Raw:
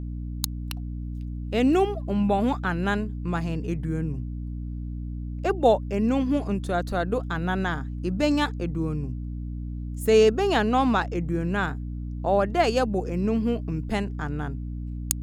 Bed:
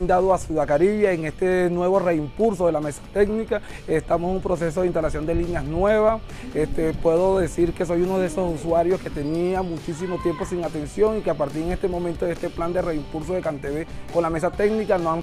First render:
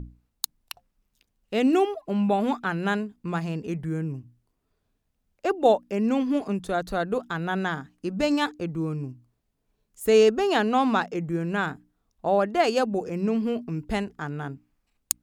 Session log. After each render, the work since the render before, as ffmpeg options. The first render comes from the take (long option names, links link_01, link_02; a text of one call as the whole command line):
ffmpeg -i in.wav -af "bandreject=frequency=60:width_type=h:width=6,bandreject=frequency=120:width_type=h:width=6,bandreject=frequency=180:width_type=h:width=6,bandreject=frequency=240:width_type=h:width=6,bandreject=frequency=300:width_type=h:width=6" out.wav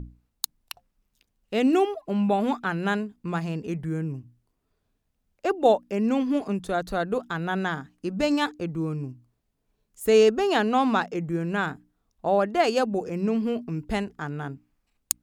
ffmpeg -i in.wav -af anull out.wav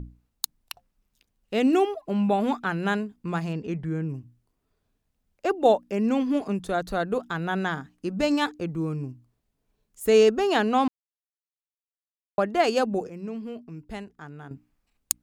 ffmpeg -i in.wav -filter_complex "[0:a]asettb=1/sr,asplit=3[link_01][link_02][link_03];[link_01]atrim=end=3.534[link_04];[link_02]atrim=start=3.53:end=4.09,asetpts=PTS-STARTPTS,afade=type=in:duration=0.004:curve=qsin,afade=type=out:start_time=0.556:duration=0.004:curve=qsin,lowpass=5400[link_05];[link_03]atrim=start=4.086[link_06];[link_04][link_05]acrossfade=duration=0.004:curve1=hsin:curve2=qsin[link_07];[link_07][link_06]acrossfade=duration=0.004:curve1=qsin:curve2=hsin,asplit=5[link_08][link_09][link_10][link_11][link_12];[link_08]atrim=end=10.88,asetpts=PTS-STARTPTS,afade=type=out:start_time=10.876:duration=0.004:curve=hsin[link_13];[link_09]atrim=start=10.88:end=12.38,asetpts=PTS-STARTPTS,volume=0[link_14];[link_10]atrim=start=12.38:end=13.072,asetpts=PTS-STARTPTS,afade=type=in:duration=0.004:curve=hsin[link_15];[link_11]atrim=start=13.068:end=14.512,asetpts=PTS-STARTPTS,volume=-9.5dB[link_16];[link_12]atrim=start=14.508[link_17];[link_13][link_14][link_15]concat=n=3:v=0:a=1[link_18];[link_18][link_16]acrossfade=duration=0.004:curve1=hsin:curve2=hsin[link_19];[link_19][link_17]acrossfade=duration=0.004:curve1=hsin:curve2=hsin" out.wav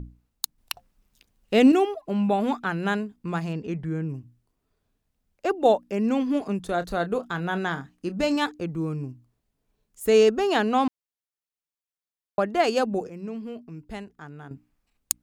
ffmpeg -i in.wav -filter_complex "[0:a]asettb=1/sr,asplit=3[link_01][link_02][link_03];[link_01]atrim=end=0.584[link_04];[link_02]atrim=start=0.58:end=1.72,asetpts=PTS-STARTPTS,afade=type=in:duration=0.004:curve=qsin,afade=type=out:start_time=1.136:duration=0.004:curve=qsin,acontrast=55[link_05];[link_03]atrim=start=1.716[link_06];[link_04][link_05]acrossfade=duration=0.004:curve1=hsin:curve2=qsin[link_07];[link_07][link_06]acrossfade=duration=0.004:curve1=qsin:curve2=hsin,asettb=1/sr,asplit=3[link_08][link_09][link_10];[link_08]atrim=end=6.664[link_11];[link_09]atrim=start=6.66:end=8.36,asetpts=PTS-STARTPTS,afade=type=in:duration=0.004:curve=qsin,afade=type=out:start_time=1.696:duration=0.004:curve=qsin,asplit=2[link_12][link_13];[link_13]adelay=29,volume=-12.5dB[link_14];[link_12][link_14]amix=inputs=2:normalize=0,atrim=end_sample=74970[link_15];[link_10]atrim=start=8.356[link_16];[link_11][link_15]acrossfade=duration=0.004:curve1=hsin:curve2=qsin[link_17];[link_17][link_16]acrossfade=duration=0.004:curve1=qsin:curve2=hsin" out.wav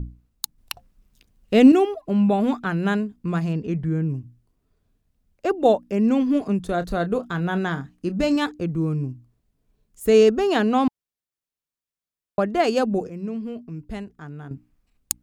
ffmpeg -i in.wav -af "lowshelf=frequency=310:gain=8,bandreject=frequency=850:width=15" out.wav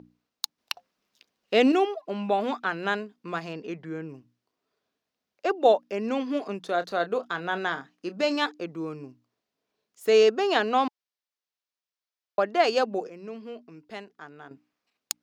ffmpeg -i in.wav -af "highpass=470,highshelf=frequency=6800:width_type=q:width=1.5:gain=-8" out.wav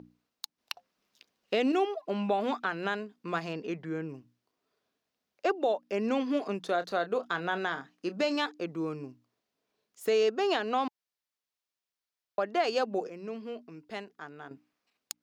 ffmpeg -i in.wav -af "acompressor=threshold=-26dB:ratio=1.5,alimiter=limit=-18dB:level=0:latency=1:release=293" out.wav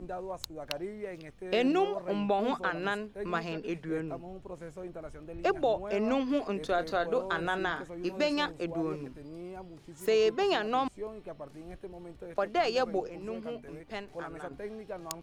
ffmpeg -i in.wav -i bed.wav -filter_complex "[1:a]volume=-20.5dB[link_01];[0:a][link_01]amix=inputs=2:normalize=0" out.wav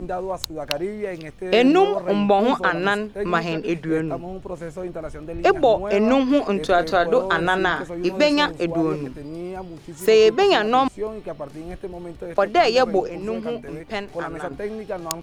ffmpeg -i in.wav -af "volume=11.5dB" out.wav